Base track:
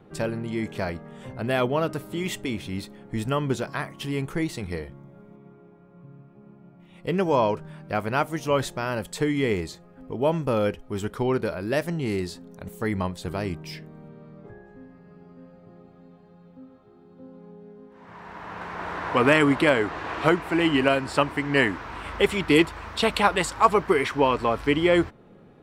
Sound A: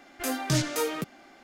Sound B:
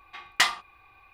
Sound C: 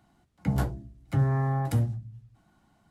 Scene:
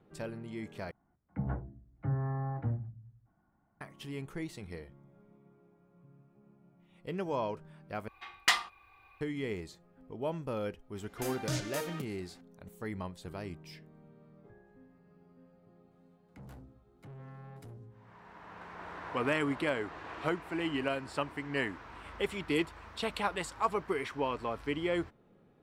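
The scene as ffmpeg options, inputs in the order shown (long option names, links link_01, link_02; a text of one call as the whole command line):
ffmpeg -i bed.wav -i cue0.wav -i cue1.wav -i cue2.wav -filter_complex "[3:a]asplit=2[link_01][link_02];[0:a]volume=-12.5dB[link_03];[link_01]lowpass=frequency=1800:width=0.5412,lowpass=frequency=1800:width=1.3066[link_04];[1:a]asplit=2[link_05][link_06];[link_06]adelay=31,volume=-13dB[link_07];[link_05][link_07]amix=inputs=2:normalize=0[link_08];[link_02]asoftclip=type=tanh:threshold=-31dB[link_09];[link_03]asplit=3[link_10][link_11][link_12];[link_10]atrim=end=0.914[link_13];[link_04]atrim=end=2.9,asetpts=PTS-STARTPTS,volume=-8.5dB[link_14];[link_11]atrim=start=3.806:end=8.084[link_15];[2:a]atrim=end=1.13,asetpts=PTS-STARTPTS,volume=-4.5dB[link_16];[link_12]atrim=start=9.206[link_17];[link_08]atrim=end=1.43,asetpts=PTS-STARTPTS,volume=-9.5dB,afade=type=in:duration=0.004:curve=hsin,afade=type=out:start_time=1.426:duration=0.004:curve=hsin,adelay=484218S[link_18];[link_09]atrim=end=2.9,asetpts=PTS-STARTPTS,volume=-16dB,afade=type=in:duration=0.004:curve=hsin,afade=type=out:start_time=2.896:duration=0.004:curve=hsin,adelay=15910[link_19];[link_13][link_14]acrossfade=duration=0.004:curve1=hsin:curve2=hsin[link_20];[link_20][link_15]acrossfade=duration=0.004:curve1=hsin:curve2=hsin[link_21];[link_21][link_16]acrossfade=duration=0.004:curve1=hsin:curve2=hsin[link_22];[link_22][link_17]acrossfade=duration=0.004:curve1=hsin:curve2=hsin[link_23];[link_23][link_18][link_19]amix=inputs=3:normalize=0" out.wav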